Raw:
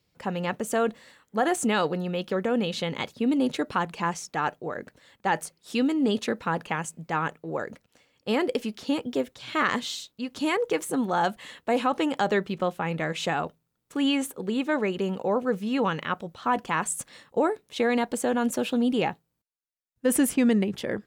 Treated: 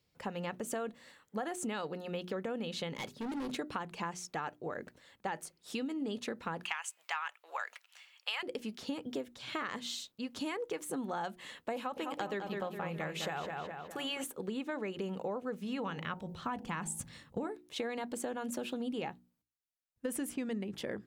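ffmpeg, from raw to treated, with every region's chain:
ffmpeg -i in.wav -filter_complex "[0:a]asettb=1/sr,asplit=3[link_01][link_02][link_03];[link_01]atrim=end=2.964[link_04];[link_02]atrim=start=2.96:end=3.55,asetpts=PTS-STARTPTS,afade=type=in:duration=0.004:curve=qsin,afade=type=out:start_time=0.586:duration=0.004:curve=qsin,bandreject=frequency=50:width_type=h:width=6,bandreject=frequency=100:width_type=h:width=6,bandreject=frequency=150:width_type=h:width=6,bandreject=frequency=200:width_type=h:width=6,bandreject=frequency=250:width_type=h:width=6,bandreject=frequency=300:width_type=h:width=6,bandreject=frequency=350:width_type=h:width=6,bandreject=frequency=400:width_type=h:width=6,asoftclip=type=hard:threshold=-29.5dB[link_05];[link_03]atrim=start=3.546[link_06];[link_04][link_05]acrossfade=duration=0.004:curve1=hsin:curve2=qsin[link_07];[link_07][link_06]acrossfade=duration=0.004:curve1=qsin:curve2=hsin,asettb=1/sr,asplit=3[link_08][link_09][link_10];[link_08]atrim=end=6.634[link_11];[link_09]atrim=start=6.63:end=8.43,asetpts=PTS-STARTPTS,afade=type=in:duration=0.004:curve=qsin,afade=type=out:start_time=1.796:duration=0.004:curve=qsin,highpass=frequency=910:width=0.5412,highpass=frequency=910:width=1.3066,equalizer=frequency=2800:width=1.6:gain=7,acontrast=70[link_12];[link_10]atrim=start=8.426[link_13];[link_11][link_12]acrossfade=duration=0.004:curve1=hsin:curve2=qsin[link_14];[link_14][link_13]acrossfade=duration=0.004:curve1=qsin:curve2=hsin,asettb=1/sr,asplit=3[link_15][link_16][link_17];[link_15]atrim=end=11.764[link_18];[link_16]atrim=start=11.76:end=14.24,asetpts=PTS-STARTPTS,afade=type=in:duration=0.004:curve=qsin,afade=type=out:start_time=2.476:duration=0.004:curve=qsin,equalizer=frequency=12000:width=6.3:gain=14.5,bandreject=frequency=280:width=5.8,asplit=2[link_19][link_20];[link_20]adelay=207,lowpass=frequency=4000:poles=1,volume=-6.5dB,asplit=2[link_21][link_22];[link_22]adelay=207,lowpass=frequency=4000:poles=1,volume=0.49,asplit=2[link_23][link_24];[link_24]adelay=207,lowpass=frequency=4000:poles=1,volume=0.49,asplit=2[link_25][link_26];[link_26]adelay=207,lowpass=frequency=4000:poles=1,volume=0.49,asplit=2[link_27][link_28];[link_28]adelay=207,lowpass=frequency=4000:poles=1,volume=0.49,asplit=2[link_29][link_30];[link_30]adelay=207,lowpass=frequency=4000:poles=1,volume=0.49[link_31];[link_19][link_21][link_23][link_25][link_27][link_29][link_31]amix=inputs=7:normalize=0,atrim=end_sample=109368[link_32];[link_17]atrim=start=14.236[link_33];[link_18][link_32]acrossfade=duration=0.004:curve1=hsin:curve2=qsin[link_34];[link_34][link_33]acrossfade=duration=0.004:curve1=qsin:curve2=hsin,asettb=1/sr,asplit=3[link_35][link_36][link_37];[link_35]atrim=end=15.624[link_38];[link_36]atrim=start=15.62:end=17.47,asetpts=PTS-STARTPTS,afade=type=in:duration=0.004:curve=qsin,afade=type=out:start_time=1.846:duration=0.004:curve=qsin,bandreject=frequency=54.12:width_type=h:width=4,bandreject=frequency=108.24:width_type=h:width=4,bandreject=frequency=162.36:width_type=h:width=4,bandreject=frequency=216.48:width_type=h:width=4,bandreject=frequency=270.6:width_type=h:width=4,bandreject=frequency=324.72:width_type=h:width=4,bandreject=frequency=378.84:width_type=h:width=4,bandreject=frequency=432.96:width_type=h:width=4,bandreject=frequency=487.08:width_type=h:width=4,bandreject=frequency=541.2:width_type=h:width=4,bandreject=frequency=595.32:width_type=h:width=4,bandreject=frequency=649.44:width_type=h:width=4,bandreject=frequency=703.56:width_type=h:width=4,bandreject=frequency=757.68:width_type=h:width=4,bandreject=frequency=811.8:width_type=h:width=4,bandreject=frequency=865.92:width_type=h:width=4,bandreject=frequency=920.04:width_type=h:width=4,asubboost=boost=10:cutoff=220[link_39];[link_37]atrim=start=17.466[link_40];[link_38][link_39]acrossfade=duration=0.004:curve1=hsin:curve2=qsin[link_41];[link_41][link_40]acrossfade=duration=0.004:curve1=qsin:curve2=hsin,bandreject=frequency=60:width_type=h:width=6,bandreject=frequency=120:width_type=h:width=6,bandreject=frequency=180:width_type=h:width=6,bandreject=frequency=240:width_type=h:width=6,bandreject=frequency=300:width_type=h:width=6,bandreject=frequency=360:width_type=h:width=6,acompressor=threshold=-30dB:ratio=6,volume=-4.5dB" out.wav

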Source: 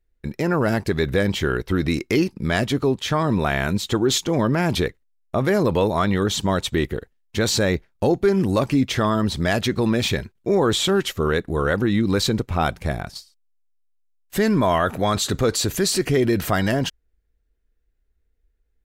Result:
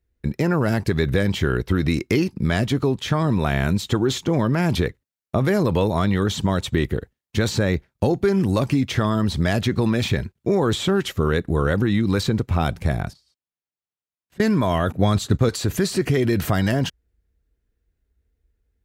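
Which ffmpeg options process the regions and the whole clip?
ffmpeg -i in.wav -filter_complex "[0:a]asettb=1/sr,asplit=3[link_01][link_02][link_03];[link_01]atrim=end=13.134[link_04];[link_02]atrim=start=13.13:end=14.4,asetpts=PTS-STARTPTS,afade=type=in:duration=0.004:curve=qsin,afade=type=out:start_time=1.266:duration=0.004:curve=qsin,acompressor=threshold=-51dB:ratio=5:attack=3.2:release=140:knee=1:detection=peak,aemphasis=mode=reproduction:type=50kf[link_05];[link_03]atrim=start=14.396[link_06];[link_04][link_05]acrossfade=duration=0.004:curve1=hsin:curve2=qsin[link_07];[link_07][link_06]acrossfade=duration=0.004:curve1=qsin:curve2=hsin,asettb=1/sr,asplit=3[link_08][link_09][link_10];[link_08]atrim=end=14.924[link_11];[link_09]atrim=start=14.92:end=15.49,asetpts=PTS-STARTPTS,afade=type=in:duration=0.004:curve=qsin,afade=type=out:start_time=0.566:duration=0.004:curve=qsin,agate=range=-33dB:threshold=-21dB:ratio=3:release=100:detection=peak,lowshelf=frequency=490:gain=11.5[link_12];[link_10]atrim=start=15.486[link_13];[link_11][link_12]acrossfade=duration=0.004:curve1=hsin:curve2=qsin[link_14];[link_14][link_13]acrossfade=duration=0.004:curve1=qsin:curve2=hsin,highpass=72,lowshelf=frequency=210:gain=10.5,acrossover=split=660|2500[link_15][link_16][link_17];[link_15]acompressor=threshold=-17dB:ratio=4[link_18];[link_16]acompressor=threshold=-25dB:ratio=4[link_19];[link_17]acompressor=threshold=-30dB:ratio=4[link_20];[link_18][link_19][link_20]amix=inputs=3:normalize=0" out.wav

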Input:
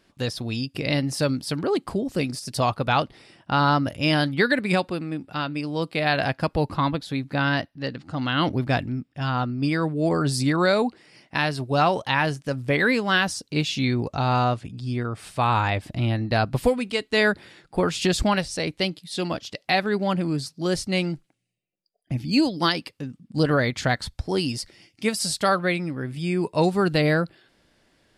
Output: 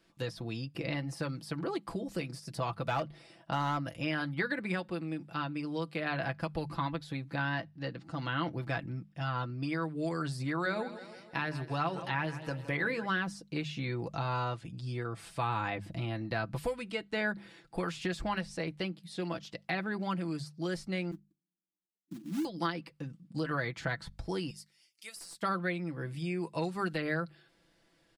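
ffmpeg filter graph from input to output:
ffmpeg -i in.wav -filter_complex "[0:a]asettb=1/sr,asplit=3[link_01][link_02][link_03];[link_01]atrim=end=2.824[link_04];[link_02]atrim=start=2.82:end=3.86,asetpts=PTS-STARTPTS,afade=type=in:duration=0.004:curve=qsin,afade=type=out:start_time=1.036:duration=0.004:curve=qsin,equalizer=frequency=630:width=3.8:gain=8.5,asoftclip=type=hard:threshold=-13dB[link_05];[link_03]atrim=start=3.856[link_06];[link_04][link_05]acrossfade=duration=0.004:curve1=hsin:curve2=qsin[link_07];[link_07][link_06]acrossfade=duration=0.004:curve1=qsin:curve2=hsin,asettb=1/sr,asplit=3[link_08][link_09][link_10];[link_08]atrim=end=10.554[link_11];[link_09]atrim=start=10.55:end=13.06,asetpts=PTS-STARTPTS,afade=type=in:duration=0.004:curve=qsin,afade=type=out:start_time=2.506:duration=0.004:curve=qsin,bandreject=frequency=60:width_type=h:width=6,bandreject=frequency=120:width_type=h:width=6,bandreject=frequency=180:width_type=h:width=6,bandreject=frequency=240:width_type=h:width=6,bandreject=frequency=300:width_type=h:width=6,bandreject=frequency=360:width_type=h:width=6,bandreject=frequency=420:width_type=h:width=6,bandreject=frequency=480:width_type=h:width=6,bandreject=frequency=540:width_type=h:width=6,bandreject=frequency=600:width_type=h:width=6,aecho=1:1:162|324|486|648|810:0.141|0.0735|0.0382|0.0199|0.0103,atrim=end_sample=110691[link_12];[link_10]atrim=start=13.056[link_13];[link_11][link_12]acrossfade=duration=0.004:curve1=hsin:curve2=qsin[link_14];[link_14][link_13]acrossfade=duration=0.004:curve1=qsin:curve2=hsin,asettb=1/sr,asplit=3[link_15][link_16][link_17];[link_15]atrim=end=21.114[link_18];[link_16]atrim=start=21.11:end=22.45,asetpts=PTS-STARTPTS,afade=type=in:duration=0.004:curve=qsin,afade=type=out:start_time=1.336:duration=0.004:curve=qsin,asuperpass=centerf=250:order=8:qfactor=1.5,acrusher=bits=5:mode=log:mix=0:aa=0.000001[link_19];[link_17]atrim=start=22.446[link_20];[link_18][link_19]acrossfade=duration=0.004:curve1=hsin:curve2=qsin[link_21];[link_21][link_20]acrossfade=duration=0.004:curve1=qsin:curve2=hsin,asettb=1/sr,asplit=3[link_22][link_23][link_24];[link_22]atrim=end=24.504[link_25];[link_23]atrim=start=24.5:end=25.42,asetpts=PTS-STARTPTS,afade=type=in:duration=0.004:curve=qsin,afade=type=out:start_time=0.916:duration=0.004:curve=qsin,aderivative,aeval=exprs='clip(val(0),-1,0.075)':channel_layout=same[link_26];[link_24]atrim=start=25.416[link_27];[link_25][link_26]acrossfade=duration=0.004:curve1=hsin:curve2=qsin[link_28];[link_28][link_27]acrossfade=duration=0.004:curve1=qsin:curve2=hsin,bandreject=frequency=50:width_type=h:width=6,bandreject=frequency=100:width_type=h:width=6,bandreject=frequency=150:width_type=h:width=6,bandreject=frequency=200:width_type=h:width=6,aecho=1:1:6:0.59,acrossover=split=490|1000|2200[link_29][link_30][link_31][link_32];[link_29]acompressor=threshold=-27dB:ratio=4[link_33];[link_30]acompressor=threshold=-36dB:ratio=4[link_34];[link_31]acompressor=threshold=-25dB:ratio=4[link_35];[link_32]acompressor=threshold=-42dB:ratio=4[link_36];[link_33][link_34][link_35][link_36]amix=inputs=4:normalize=0,volume=-7.5dB" out.wav

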